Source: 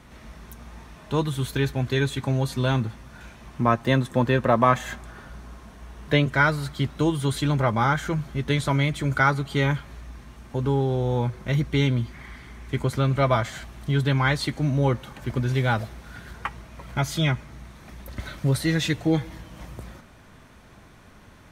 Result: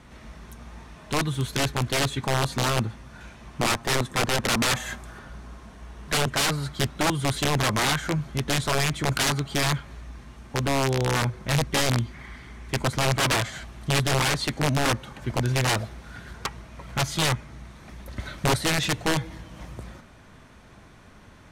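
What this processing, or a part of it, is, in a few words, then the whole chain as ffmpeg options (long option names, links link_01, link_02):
overflowing digital effects unit: -filter_complex "[0:a]aeval=exprs='(mod(6.68*val(0)+1,2)-1)/6.68':channel_layout=same,lowpass=11000,asettb=1/sr,asplit=3[link_01][link_02][link_03];[link_01]atrim=end=4.744[link_04];[link_02]atrim=start=4.74:end=5.19,asetpts=PTS-STARTPTS,afade=type=in:duration=0.004:curve=qsin,afade=type=out:start_time=0.446:duration=0.004:curve=qsin,highshelf=frequency=9100:gain=10[link_05];[link_03]atrim=start=5.186[link_06];[link_04][link_05]acrossfade=duration=0.004:curve1=hsin:curve2=qsin[link_07];[link_07][link_06]acrossfade=duration=0.004:curve1=qsin:curve2=hsin"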